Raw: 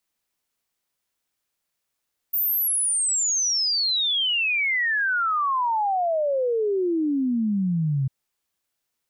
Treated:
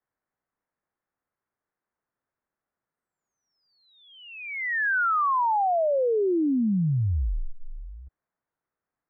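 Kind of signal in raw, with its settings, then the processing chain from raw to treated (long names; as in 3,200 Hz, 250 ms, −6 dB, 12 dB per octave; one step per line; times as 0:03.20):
exponential sine sweep 15,000 Hz → 130 Hz 5.75 s −20 dBFS
single-sideband voice off tune −200 Hz 240–2,000 Hz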